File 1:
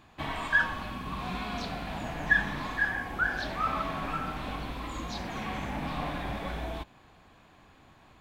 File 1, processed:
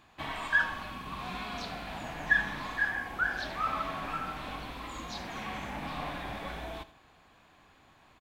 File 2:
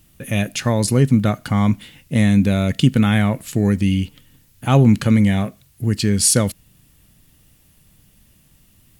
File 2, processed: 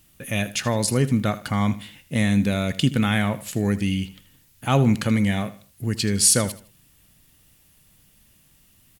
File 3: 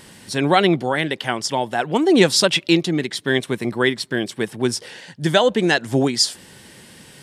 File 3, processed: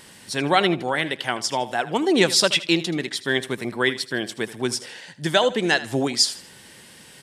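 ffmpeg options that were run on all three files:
ffmpeg -i in.wav -filter_complex "[0:a]lowshelf=frequency=490:gain=-6,asplit=2[link_01][link_02];[link_02]aecho=0:1:79|158|237:0.158|0.0491|0.0152[link_03];[link_01][link_03]amix=inputs=2:normalize=0,volume=-1dB" out.wav

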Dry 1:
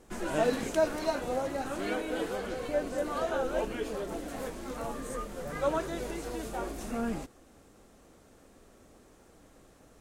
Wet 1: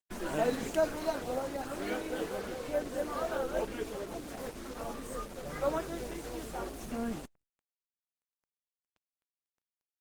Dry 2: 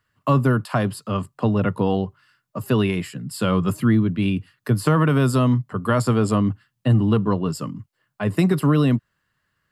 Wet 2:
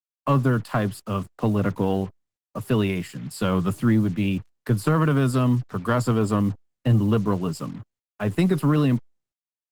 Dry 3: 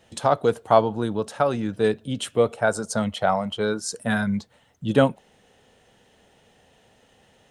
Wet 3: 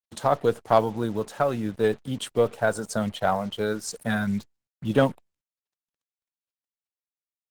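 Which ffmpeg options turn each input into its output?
ffmpeg -i in.wav -af "aeval=exprs='0.75*(cos(1*acos(clip(val(0)/0.75,-1,1)))-cos(1*PI/2))+0.0188*(cos(6*acos(clip(val(0)/0.75,-1,1)))-cos(6*PI/2))+0.0299*(cos(8*acos(clip(val(0)/0.75,-1,1)))-cos(8*PI/2))':channel_layout=same,acrusher=bits=6:mix=0:aa=0.5,volume=-2dB" -ar 48000 -c:a libopus -b:a 16k out.opus

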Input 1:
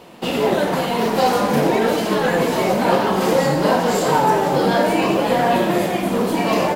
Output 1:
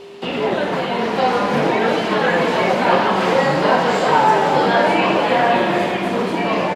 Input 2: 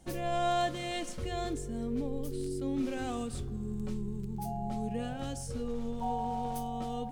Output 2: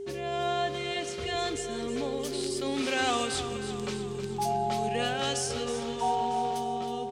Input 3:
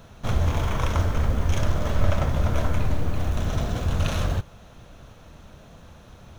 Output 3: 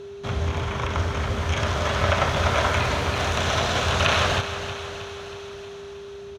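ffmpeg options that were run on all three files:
ffmpeg -i in.wav -filter_complex "[0:a]lowpass=3900,acrossover=split=2800[link_01][link_02];[link_02]acompressor=threshold=-48dB:ratio=4:attack=1:release=60[link_03];[link_01][link_03]amix=inputs=2:normalize=0,highpass=frequency=58:width=0.5412,highpass=frequency=58:width=1.3066,highshelf=frequency=2100:gain=8.5,acrossover=split=530[link_04][link_05];[link_05]dynaudnorm=framelen=350:gausssize=9:maxgain=13.5dB[link_06];[link_04][link_06]amix=inputs=2:normalize=0,crystalizer=i=1.5:c=0,aeval=exprs='val(0)+0.0224*sin(2*PI*400*n/s)':channel_layout=same,asplit=2[link_07][link_08];[link_08]aecho=0:1:317|634|951|1268|1585|1902:0.282|0.161|0.0916|0.0522|0.0298|0.017[link_09];[link_07][link_09]amix=inputs=2:normalize=0,volume=-2.5dB" out.wav

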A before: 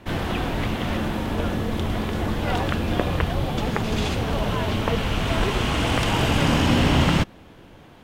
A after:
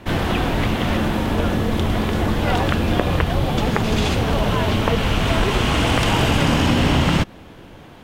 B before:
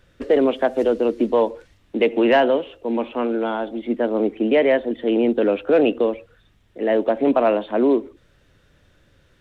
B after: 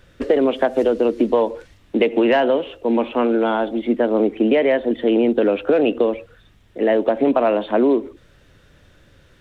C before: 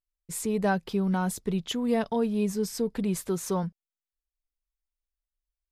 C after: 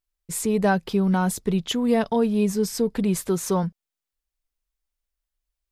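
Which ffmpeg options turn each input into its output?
ffmpeg -i in.wav -af "acompressor=threshold=-18dB:ratio=6,volume=5.5dB" out.wav

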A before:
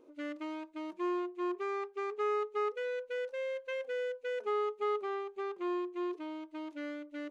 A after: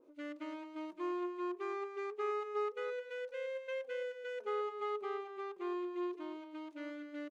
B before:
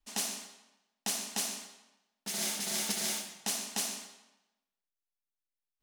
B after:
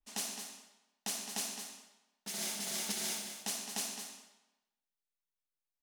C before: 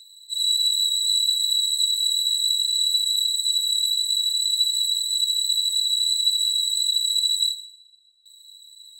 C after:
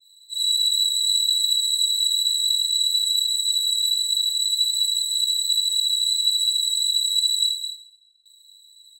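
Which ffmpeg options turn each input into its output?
ffmpeg -i in.wav -filter_complex "[0:a]asplit=2[link_01][link_02];[link_02]aecho=0:1:214:0.376[link_03];[link_01][link_03]amix=inputs=2:normalize=0,adynamicequalizer=threshold=0.02:dfrequency=2300:dqfactor=0.7:tfrequency=2300:tqfactor=0.7:attack=5:release=100:ratio=0.375:range=2.5:mode=boostabove:tftype=highshelf,volume=-4.5dB" out.wav

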